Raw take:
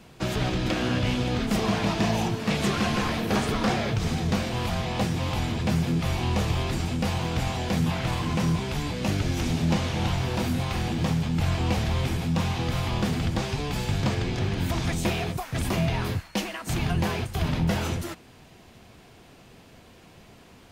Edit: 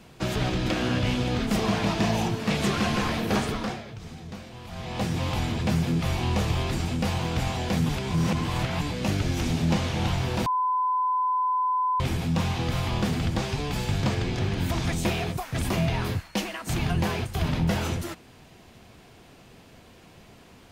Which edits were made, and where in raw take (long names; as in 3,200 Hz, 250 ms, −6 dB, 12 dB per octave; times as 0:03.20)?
0:03.35–0:05.16: duck −14 dB, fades 0.49 s
0:07.89–0:08.81: reverse
0:10.46–0:12.00: beep over 1,010 Hz −21.5 dBFS